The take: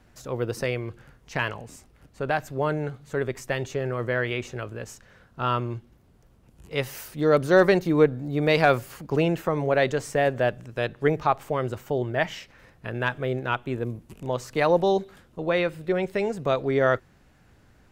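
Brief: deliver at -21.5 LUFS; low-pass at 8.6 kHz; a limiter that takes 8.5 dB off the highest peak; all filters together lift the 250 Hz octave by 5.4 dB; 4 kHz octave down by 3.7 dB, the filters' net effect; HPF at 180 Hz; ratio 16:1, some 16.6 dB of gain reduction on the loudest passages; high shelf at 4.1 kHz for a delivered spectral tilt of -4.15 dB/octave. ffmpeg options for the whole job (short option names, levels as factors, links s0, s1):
-af "highpass=180,lowpass=8600,equalizer=f=250:t=o:g=9,equalizer=f=4000:t=o:g=-8.5,highshelf=f=4100:g=6.5,acompressor=threshold=0.0501:ratio=16,volume=4.47,alimiter=limit=0.335:level=0:latency=1"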